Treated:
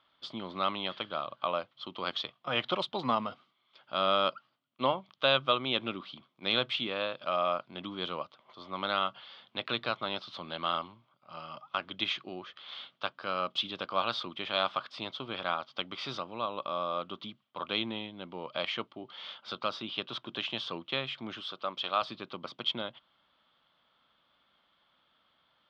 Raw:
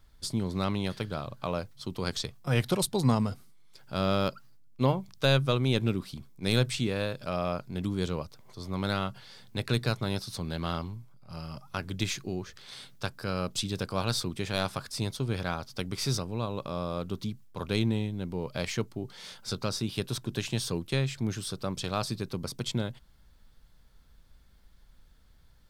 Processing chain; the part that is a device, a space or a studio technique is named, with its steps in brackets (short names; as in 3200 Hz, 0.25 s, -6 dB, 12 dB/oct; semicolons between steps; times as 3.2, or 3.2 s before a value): phone earpiece (speaker cabinet 380–3500 Hz, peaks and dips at 430 Hz -8 dB, 620 Hz +3 dB, 1200 Hz +8 dB, 1700 Hz -4 dB, 3200 Hz +10 dB); 21.4–22.02 low shelf 250 Hz -8.5 dB